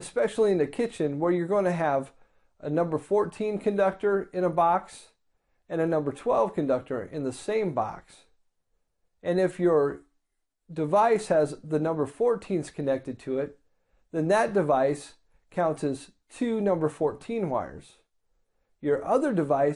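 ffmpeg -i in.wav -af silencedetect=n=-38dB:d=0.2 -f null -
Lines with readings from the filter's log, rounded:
silence_start: 2.05
silence_end: 2.63 | silence_duration: 0.58
silence_start: 4.99
silence_end: 5.70 | silence_duration: 0.71
silence_start: 8.00
silence_end: 9.25 | silence_duration: 1.25
silence_start: 9.97
silence_end: 10.71 | silence_duration: 0.74
silence_start: 13.48
silence_end: 14.14 | silence_duration: 0.66
silence_start: 15.07
silence_end: 15.52 | silence_duration: 0.45
silence_start: 16.04
silence_end: 16.35 | silence_duration: 0.31
silence_start: 17.80
silence_end: 18.83 | silence_duration: 1.03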